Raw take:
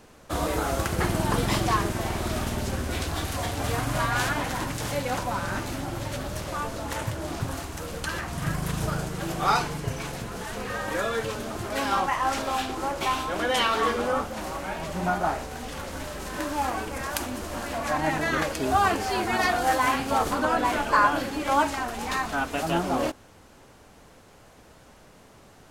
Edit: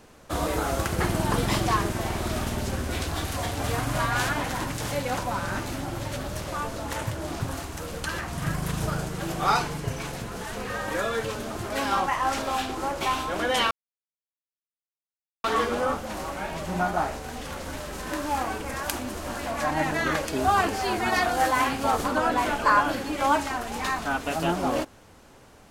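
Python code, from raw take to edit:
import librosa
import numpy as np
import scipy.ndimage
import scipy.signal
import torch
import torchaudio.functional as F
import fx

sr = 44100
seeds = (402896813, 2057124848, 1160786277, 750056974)

y = fx.edit(x, sr, fx.insert_silence(at_s=13.71, length_s=1.73), tone=tone)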